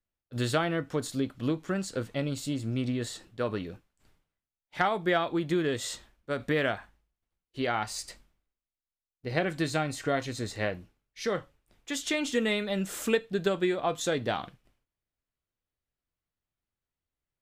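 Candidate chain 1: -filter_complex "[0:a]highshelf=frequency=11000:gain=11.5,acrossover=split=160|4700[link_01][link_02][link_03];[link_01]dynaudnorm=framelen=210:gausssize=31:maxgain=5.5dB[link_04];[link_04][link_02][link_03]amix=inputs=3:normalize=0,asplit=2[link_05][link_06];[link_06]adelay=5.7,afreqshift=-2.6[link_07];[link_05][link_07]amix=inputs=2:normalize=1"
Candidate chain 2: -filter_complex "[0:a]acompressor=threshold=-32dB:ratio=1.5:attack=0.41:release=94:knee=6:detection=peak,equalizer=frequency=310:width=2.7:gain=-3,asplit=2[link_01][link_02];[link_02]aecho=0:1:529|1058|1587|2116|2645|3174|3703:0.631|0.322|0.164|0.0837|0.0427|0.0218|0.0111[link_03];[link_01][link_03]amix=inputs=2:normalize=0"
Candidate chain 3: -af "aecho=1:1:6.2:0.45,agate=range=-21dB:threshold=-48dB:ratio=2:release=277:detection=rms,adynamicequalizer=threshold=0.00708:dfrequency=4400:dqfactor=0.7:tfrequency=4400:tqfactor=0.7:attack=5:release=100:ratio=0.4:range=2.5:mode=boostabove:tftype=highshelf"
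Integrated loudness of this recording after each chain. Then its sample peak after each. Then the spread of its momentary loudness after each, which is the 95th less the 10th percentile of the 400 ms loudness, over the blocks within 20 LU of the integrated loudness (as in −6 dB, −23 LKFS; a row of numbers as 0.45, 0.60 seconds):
−33.5, −34.0, −29.5 LKFS; −13.5, −19.0, −11.0 dBFS; 9, 12, 10 LU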